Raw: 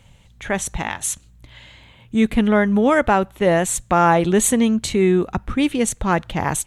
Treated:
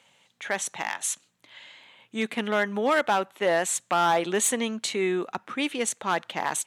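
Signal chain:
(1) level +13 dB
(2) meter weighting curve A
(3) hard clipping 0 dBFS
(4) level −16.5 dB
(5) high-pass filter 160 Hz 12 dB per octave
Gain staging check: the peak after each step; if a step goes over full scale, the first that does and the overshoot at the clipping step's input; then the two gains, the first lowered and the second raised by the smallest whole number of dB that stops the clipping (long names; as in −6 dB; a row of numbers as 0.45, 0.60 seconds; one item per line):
+9.0, +10.0, 0.0, −16.5, −13.0 dBFS
step 1, 10.0 dB
step 1 +3 dB, step 4 −6.5 dB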